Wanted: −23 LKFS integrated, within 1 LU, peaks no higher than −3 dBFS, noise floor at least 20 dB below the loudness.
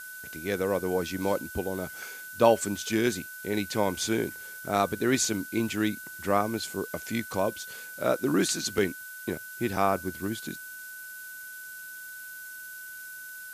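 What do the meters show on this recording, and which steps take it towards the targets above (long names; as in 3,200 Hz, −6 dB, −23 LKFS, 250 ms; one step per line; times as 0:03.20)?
interfering tone 1,500 Hz; level of the tone −41 dBFS; background noise floor −42 dBFS; target noise floor −49 dBFS; integrated loudness −29.0 LKFS; sample peak −5.5 dBFS; target loudness −23.0 LKFS
→ notch filter 1,500 Hz, Q 30
broadband denoise 7 dB, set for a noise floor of −42 dBFS
level +6 dB
brickwall limiter −3 dBFS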